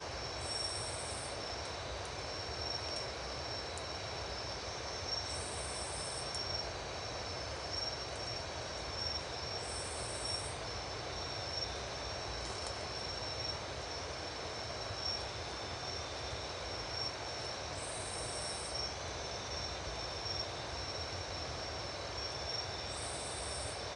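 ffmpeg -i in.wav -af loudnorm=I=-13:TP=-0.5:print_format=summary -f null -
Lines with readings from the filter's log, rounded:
Input Integrated:    -39.6 LUFS
Input True Peak:     -23.5 dBTP
Input LRA:             1.1 LU
Input Threshold:     -49.6 LUFS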